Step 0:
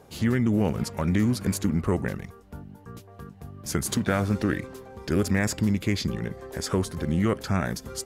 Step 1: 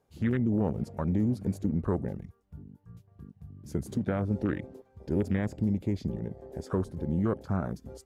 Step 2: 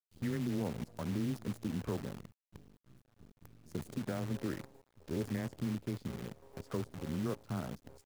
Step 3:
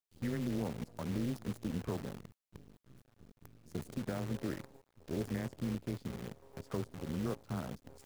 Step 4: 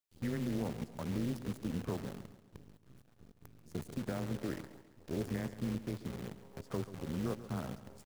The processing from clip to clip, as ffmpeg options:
ffmpeg -i in.wav -filter_complex "[0:a]afwtdn=0.0282,acrossover=split=850[link_01][link_02];[link_02]alimiter=level_in=2dB:limit=-24dB:level=0:latency=1:release=212,volume=-2dB[link_03];[link_01][link_03]amix=inputs=2:normalize=0,volume=-4dB" out.wav
ffmpeg -i in.wav -af "afreqshift=14,acrusher=bits=7:dc=4:mix=0:aa=0.000001,volume=-8.5dB" out.wav
ffmpeg -i in.wav -af "areverse,acompressor=mode=upward:threshold=-51dB:ratio=2.5,areverse,tremolo=f=270:d=0.462,volume=1.5dB" out.wav
ffmpeg -i in.wav -af "aecho=1:1:137|274|411|548|685:0.2|0.0958|0.046|0.0221|0.0106" out.wav

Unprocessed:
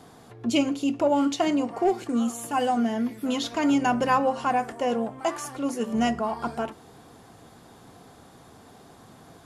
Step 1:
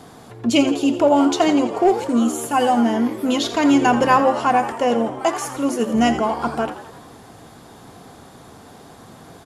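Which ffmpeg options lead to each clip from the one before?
ffmpeg -i in.wav -filter_complex "[0:a]asplit=7[link_01][link_02][link_03][link_04][link_05][link_06][link_07];[link_02]adelay=84,afreqshift=76,volume=-12.5dB[link_08];[link_03]adelay=168,afreqshift=152,volume=-17.5dB[link_09];[link_04]adelay=252,afreqshift=228,volume=-22.6dB[link_10];[link_05]adelay=336,afreqshift=304,volume=-27.6dB[link_11];[link_06]adelay=420,afreqshift=380,volume=-32.6dB[link_12];[link_07]adelay=504,afreqshift=456,volume=-37.7dB[link_13];[link_01][link_08][link_09][link_10][link_11][link_12][link_13]amix=inputs=7:normalize=0,volume=7dB" out.wav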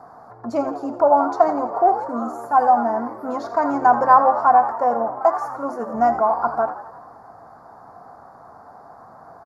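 ffmpeg -i in.wav -af "firequalizer=gain_entry='entry(380,0);entry(680,15);entry(1300,13);entry(3000,-27);entry(4600,-5);entry(8400,-16);entry(12000,-9)':delay=0.05:min_phase=1,volume=-10.5dB" out.wav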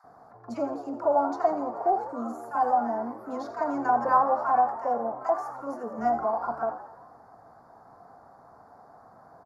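ffmpeg -i in.wav -filter_complex "[0:a]acrossover=split=1100[link_01][link_02];[link_01]adelay=40[link_03];[link_03][link_02]amix=inputs=2:normalize=0,volume=-7dB" out.wav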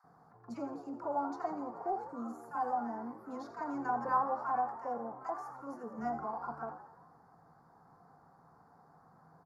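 ffmpeg -i in.wav -af "equalizer=frequency=160:width_type=o:width=0.33:gain=12,equalizer=frequency=630:width_type=o:width=0.33:gain=-10,equalizer=frequency=3150:width_type=o:width=0.33:gain=-3,volume=-8dB" out.wav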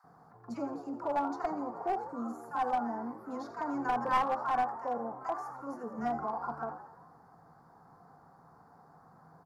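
ffmpeg -i in.wav -af "aeval=exprs='clip(val(0),-1,0.0316)':channel_layout=same,volume=3.5dB" out.wav

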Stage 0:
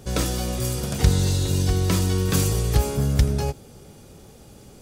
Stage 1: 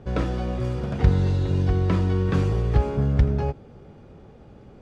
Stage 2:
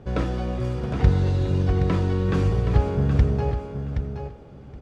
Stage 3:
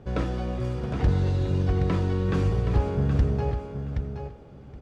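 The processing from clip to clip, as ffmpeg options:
ffmpeg -i in.wav -af "lowpass=1900" out.wav
ffmpeg -i in.wav -af "aecho=1:1:772|1544|2316:0.398|0.0637|0.0102" out.wav
ffmpeg -i in.wav -af "asoftclip=type=hard:threshold=-12dB,volume=-2.5dB" out.wav

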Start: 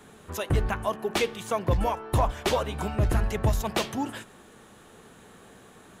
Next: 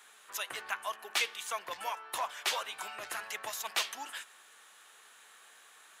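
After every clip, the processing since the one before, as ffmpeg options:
ffmpeg -i in.wav -af "highpass=1400" out.wav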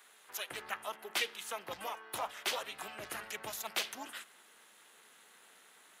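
ffmpeg -i in.wav -filter_complex "[0:a]acrossover=split=300|900|7800[link_01][link_02][link_03][link_04];[link_01]dynaudnorm=framelen=350:gausssize=3:maxgain=9dB[link_05];[link_03]aeval=exprs='val(0)*sin(2*PI*220*n/s)':channel_layout=same[link_06];[link_05][link_02][link_06][link_04]amix=inputs=4:normalize=0" out.wav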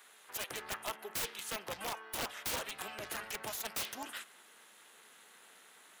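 ffmpeg -i in.wav -af "aeval=exprs='(mod(37.6*val(0)+1,2)-1)/37.6':channel_layout=same,volume=1.5dB" out.wav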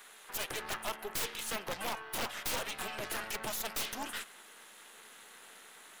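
ffmpeg -i in.wav -af "aeval=exprs='(tanh(100*val(0)+0.6)-tanh(0.6))/100':channel_layout=same,volume=8dB" out.wav

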